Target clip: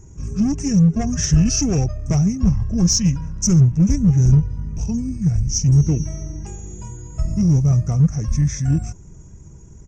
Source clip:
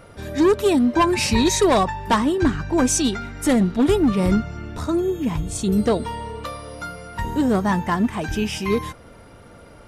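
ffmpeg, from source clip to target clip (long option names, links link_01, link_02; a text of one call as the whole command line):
ffmpeg -i in.wav -filter_complex "[0:a]firequalizer=gain_entry='entry(220,0);entry(370,-12);entry(540,-13);entry(810,-19);entry(1200,-21);entry(3500,-18);entry(5900,-29);entry(8400,6);entry(13000,-13)':delay=0.05:min_phase=1,asetrate=30296,aresample=44100,atempo=1.45565,asplit=2[link_01][link_02];[link_02]asoftclip=type=hard:threshold=-19dB,volume=-6dB[link_03];[link_01][link_03]amix=inputs=2:normalize=0,volume=4dB" out.wav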